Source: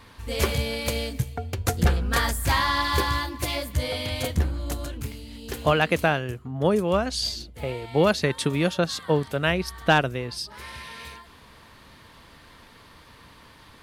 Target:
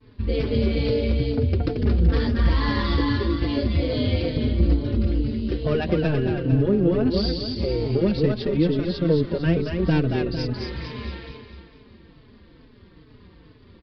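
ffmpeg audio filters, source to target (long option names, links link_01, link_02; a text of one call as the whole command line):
ffmpeg -i in.wav -filter_complex "[0:a]agate=range=-33dB:threshold=-42dB:ratio=3:detection=peak,tremolo=f=160:d=0.621,aresample=11025,asoftclip=type=tanh:threshold=-19dB,aresample=44100,acontrast=31,lowshelf=frequency=550:width_type=q:width=1.5:gain=11.5,alimiter=limit=-10.5dB:level=0:latency=1:release=249,aecho=1:1:226|452|678|904|1130|1356:0.668|0.301|0.135|0.0609|0.0274|0.0123,asplit=2[link_01][link_02];[link_02]adelay=4.1,afreqshift=-2.3[link_03];[link_01][link_03]amix=inputs=2:normalize=1" out.wav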